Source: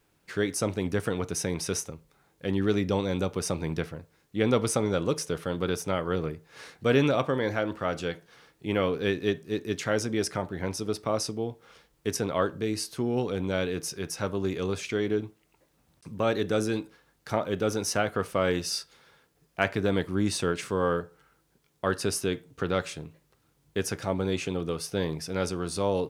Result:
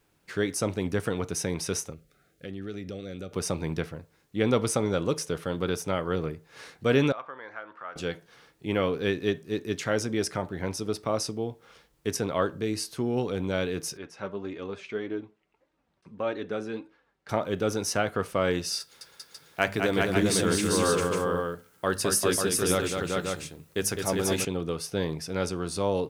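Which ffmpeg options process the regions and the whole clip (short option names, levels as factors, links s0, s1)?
-filter_complex "[0:a]asettb=1/sr,asplit=3[s0][s1][s2];[s0]atrim=end=1.934[s3];[s1]atrim=start=1.93:end=3.33,asetpts=PTS-STARTPTS,afade=t=in:d=0.004:c=qsin,afade=t=out:st=1.396:d=0.004:c=qsin,asuperstop=centerf=940:order=8:qfactor=2.2,acompressor=threshold=0.0126:ratio=2.5:attack=3.2:release=140:knee=1:detection=peak[s4];[s2]atrim=start=3.326[s5];[s3][s4]acrossfade=d=0.004:c1=hsin:c2=qsin[s6];[s6][s5]acrossfade=d=0.004:c1=qsin:c2=hsin,asettb=1/sr,asplit=3[s7][s8][s9];[s7]atrim=end=7.124[s10];[s8]atrim=start=7.12:end=7.96,asetpts=PTS-STARTPTS,afade=t=in:d=0.004:c=qsin,afade=t=out:st=0.836:d=0.004:c=qsin,acompressor=threshold=0.0158:ratio=1.5:attack=3.2:release=140:knee=1:detection=peak,bandpass=f=1300:t=q:w=1.8[s11];[s9]atrim=start=7.956[s12];[s10][s11]acrossfade=d=0.004:c1=hsin:c2=qsin[s13];[s13][s12]acrossfade=d=0.004:c1=qsin:c2=hsin,asettb=1/sr,asplit=3[s14][s15][s16];[s14]atrim=end=13.974[s17];[s15]atrim=start=13.97:end=17.29,asetpts=PTS-STARTPTS,afade=t=in:d=0.004:c=qsin,afade=t=out:st=3.316:d=0.004:c=qsin,lowpass=8400,bass=f=250:g=-6,treble=f=4000:g=-13,flanger=delay=3.2:depth=2.1:regen=47:speed=1.7:shape=sinusoidal[s18];[s16]atrim=start=17.286[s19];[s17][s18]acrossfade=d=0.004:c1=hsin:c2=qsin[s20];[s20][s19]acrossfade=d=0.004:c1=qsin:c2=hsin,asettb=1/sr,asplit=3[s21][s22][s23];[s21]atrim=end=18.804[s24];[s22]atrim=start=18.8:end=24.45,asetpts=PTS-STARTPTS,afade=t=in:d=0.004:c=qsin,afade=t=out:st=5.646:d=0.004:c=qsin,highshelf=f=7100:g=11,bandreject=f=50:t=h:w=6,bandreject=f=100:t=h:w=6,bandreject=f=150:t=h:w=6,bandreject=f=200:t=h:w=6,bandreject=f=250:t=h:w=6,aecho=1:1:209|395|543:0.562|0.708|0.562,atrim=end_sample=249165[s25];[s23]atrim=start=24.446[s26];[s24][s25]acrossfade=d=0.004:c1=hsin:c2=qsin[s27];[s27][s26]acrossfade=d=0.004:c1=qsin:c2=hsin"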